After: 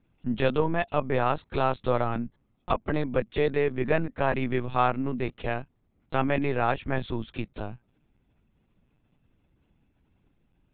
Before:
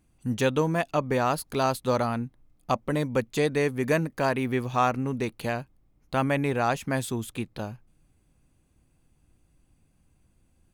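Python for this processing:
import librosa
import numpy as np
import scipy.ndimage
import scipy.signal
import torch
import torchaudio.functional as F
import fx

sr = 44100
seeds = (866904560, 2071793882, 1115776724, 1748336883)

y = scipy.signal.sosfilt(scipy.signal.butter(4, 53.0, 'highpass', fs=sr, output='sos'), x)
y = fx.lpc_vocoder(y, sr, seeds[0], excitation='pitch_kept', order=16)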